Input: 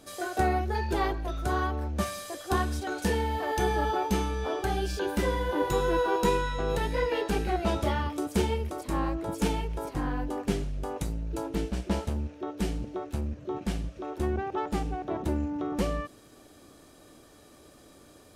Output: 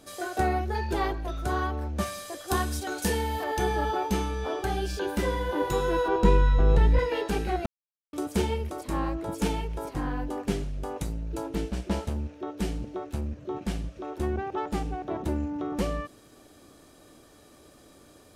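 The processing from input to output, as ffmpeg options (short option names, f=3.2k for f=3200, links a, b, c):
-filter_complex "[0:a]asettb=1/sr,asplit=3[a][b][c];[a]atrim=end=2.484[d];[b]atrim=start=2.48:end=3.44,asetpts=PTS-STARTPTS,afade=t=in:d=0.004:c=qsin,afade=t=out:st=0.956:d=0.004:c=qsin,aemphasis=mode=production:type=cd[e];[c]atrim=start=3.436[f];[d][e]acrossfade=d=0.004:c1=hsin:c2=qsin[g];[g][f]acrossfade=d=0.004:c1=qsin:c2=hsin,asettb=1/sr,asplit=3[h][i][j];[h]atrim=end=6.084[k];[i]atrim=start=6.08:end=6.99,asetpts=PTS-STARTPTS,afade=t=in:d=0.004:c=qsin,afade=t=out:st=0.906:d=0.004:c=qsin,aemphasis=mode=reproduction:type=bsi[l];[j]atrim=start=6.986[m];[k][l]acrossfade=d=0.004:c1=hsin:c2=qsin[n];[n][m]acrossfade=d=0.004:c1=qsin:c2=hsin,asplit=3[o][p][q];[o]atrim=end=7.66,asetpts=PTS-STARTPTS,afade=t=out:st=7.656:d=0.004:c=hsin[r];[p]atrim=start=7.66:end=8.13,asetpts=PTS-STARTPTS,volume=0[s];[q]atrim=start=8.13,asetpts=PTS-STARTPTS,afade=t=in:d=0.004:c=hsin[t];[r][s][t]concat=n=3:v=0:a=1"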